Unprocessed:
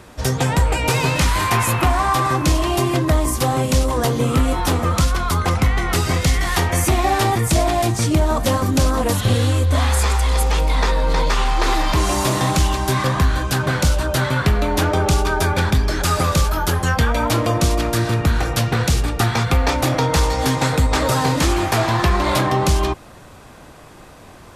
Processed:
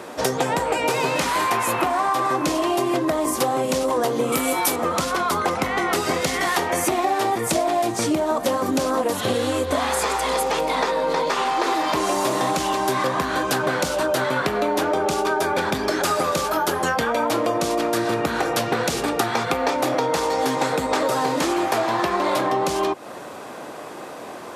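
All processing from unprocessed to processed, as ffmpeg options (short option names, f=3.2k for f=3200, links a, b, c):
-filter_complex "[0:a]asettb=1/sr,asplit=3[a][b][c];[a]atrim=end=4.324[d];[b]atrim=start=4.32:end=4.76,asetpts=PTS-STARTPTS,afade=t=in:d=0.004:c=qsin,afade=t=out:st=0.436:d=0.004:c=qsin,aemphasis=mode=production:type=75fm,aeval=exprs='val(0)+0.0447*sin(2*PI*2300*n/s)':c=same[e];[c]atrim=start=4.756[f];[d][e]acrossfade=d=0.004:c1=hsin:c2=qsin[g];[g][f]acrossfade=d=0.004:c1=qsin:c2=hsin,highpass=250,equalizer=f=520:w=0.5:g=6.5,acompressor=threshold=-23dB:ratio=6,volume=4dB"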